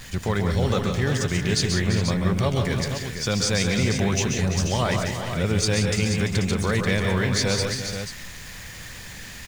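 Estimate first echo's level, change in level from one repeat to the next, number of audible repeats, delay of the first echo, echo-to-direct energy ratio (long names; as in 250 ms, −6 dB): −7.5 dB, repeats not evenly spaced, 5, 133 ms, −2.0 dB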